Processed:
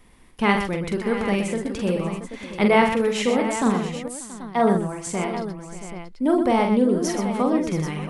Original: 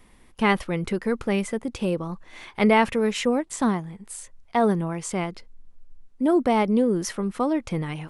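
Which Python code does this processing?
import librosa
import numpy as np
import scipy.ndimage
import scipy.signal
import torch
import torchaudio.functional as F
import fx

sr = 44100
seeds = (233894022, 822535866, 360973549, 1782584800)

y = fx.echo_multitap(x, sr, ms=(44, 124, 587, 679, 784), db=(-5.0, -8.0, -16.5, -12.5, -10.5))
y = fx.band_widen(y, sr, depth_pct=40, at=(4.08, 5.07))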